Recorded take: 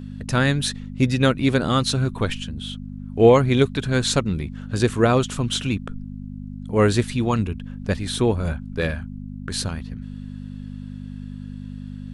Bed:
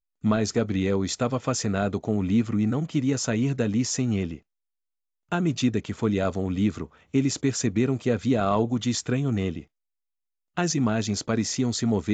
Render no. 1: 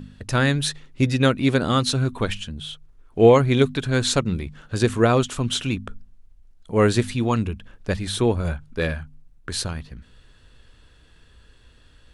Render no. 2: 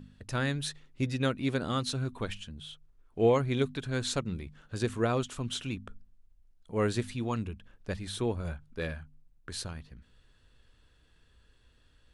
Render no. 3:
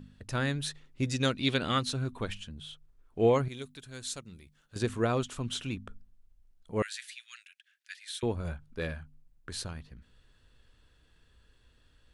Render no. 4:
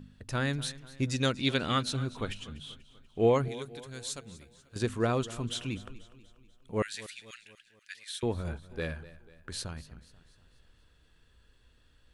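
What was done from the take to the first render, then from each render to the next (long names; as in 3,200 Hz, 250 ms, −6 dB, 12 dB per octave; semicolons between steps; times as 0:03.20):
hum removal 50 Hz, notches 5
level −11 dB
0:01.05–0:01.78: parametric band 8,300 Hz → 2,000 Hz +13.5 dB 1.1 octaves; 0:03.48–0:04.76: first-order pre-emphasis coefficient 0.8; 0:06.82–0:08.23: Butterworth high-pass 1,600 Hz 48 dB per octave
feedback echo with a swinging delay time 243 ms, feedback 50%, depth 56 cents, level −18 dB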